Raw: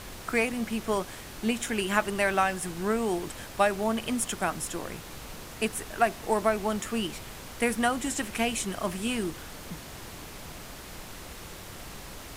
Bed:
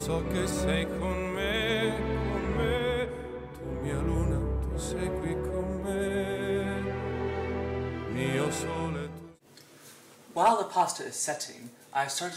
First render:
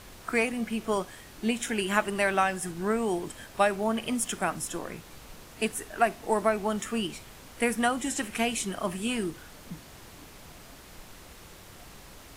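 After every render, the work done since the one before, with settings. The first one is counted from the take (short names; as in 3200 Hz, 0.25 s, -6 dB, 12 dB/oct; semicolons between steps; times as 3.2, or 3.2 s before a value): noise print and reduce 6 dB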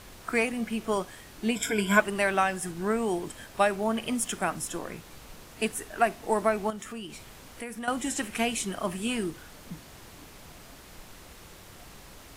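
1.55–2 ripple EQ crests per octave 1.7, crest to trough 16 dB; 6.7–7.88 compressor 2.5:1, threshold -39 dBFS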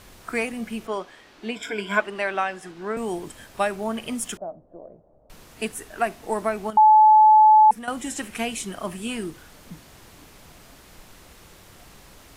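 0.87–2.97 three-band isolator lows -13 dB, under 240 Hz, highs -17 dB, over 5500 Hz; 4.37–5.3 ladder low-pass 670 Hz, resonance 75%; 6.77–7.71 bleep 862 Hz -9.5 dBFS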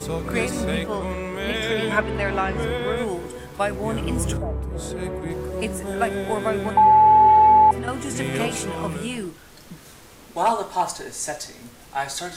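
add bed +2.5 dB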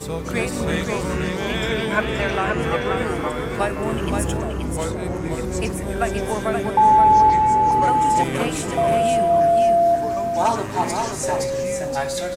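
echoes that change speed 0.242 s, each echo -4 st, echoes 2, each echo -6 dB; on a send: echo 0.526 s -5 dB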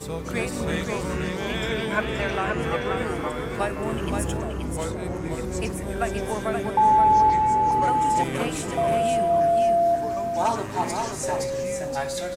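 gain -4 dB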